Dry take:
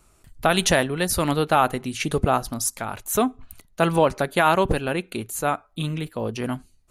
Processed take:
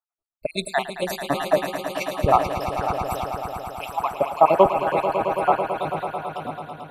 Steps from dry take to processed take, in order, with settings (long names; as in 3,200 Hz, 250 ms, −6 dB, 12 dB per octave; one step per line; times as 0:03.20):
time-frequency cells dropped at random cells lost 75%
bass and treble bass −3 dB, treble −6 dB
automatic gain control gain up to 4 dB
parametric band 660 Hz +8.5 dB 1.1 octaves
on a send: echo that builds up and dies away 110 ms, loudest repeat 5, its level −8 dB
on the sum: multiband upward and downward expander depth 70%
level −5.5 dB